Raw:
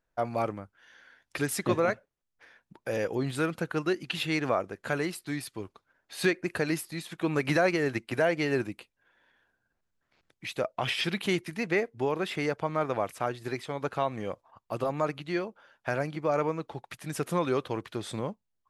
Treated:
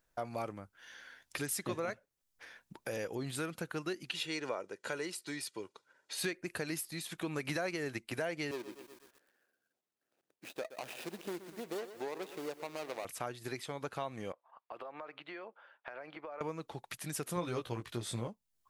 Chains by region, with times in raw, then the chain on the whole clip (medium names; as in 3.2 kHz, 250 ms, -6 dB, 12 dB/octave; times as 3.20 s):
4.13–6.18 s: Chebyshev band-pass 230–7800 Hz + comb 2.1 ms, depth 43%
8.51–13.05 s: median filter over 41 samples + high-pass 370 Hz + bit-crushed delay 122 ms, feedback 55%, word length 9-bit, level -14 dB
14.32–16.41 s: high-pass 580 Hz + compression, threshold -38 dBFS + distance through air 470 m
17.36–18.28 s: bass shelf 130 Hz +9.5 dB + doubling 17 ms -4 dB
whole clip: treble shelf 4 kHz +10 dB; compression 2:1, threshold -45 dBFS; trim +1 dB